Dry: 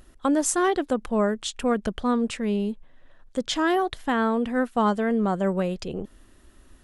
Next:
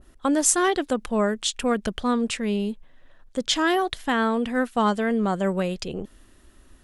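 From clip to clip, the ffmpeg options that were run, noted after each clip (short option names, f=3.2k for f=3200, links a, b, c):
-af "adynamicequalizer=threshold=0.0112:dfrequency=1700:dqfactor=0.7:tfrequency=1700:tqfactor=0.7:attack=5:release=100:ratio=0.375:range=3:mode=boostabove:tftype=highshelf"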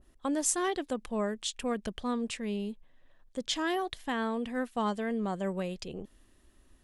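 -af "equalizer=f=1.4k:t=o:w=0.22:g=-6,volume=-9dB"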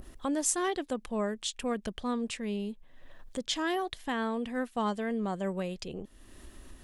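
-af "acompressor=mode=upward:threshold=-35dB:ratio=2.5"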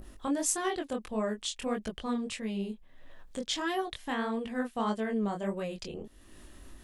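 -af "flanger=delay=18:depth=6.8:speed=1.6,volume=2.5dB"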